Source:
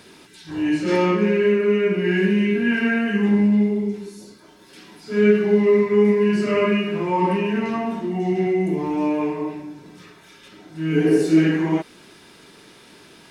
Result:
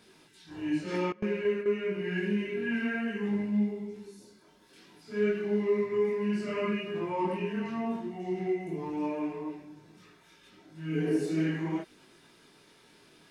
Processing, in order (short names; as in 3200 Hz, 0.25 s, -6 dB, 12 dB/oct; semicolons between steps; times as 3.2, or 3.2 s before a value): chorus voices 4, 0.52 Hz, delay 22 ms, depth 4.6 ms; 1.12–1.66 gate with hold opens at -14 dBFS; gain -8.5 dB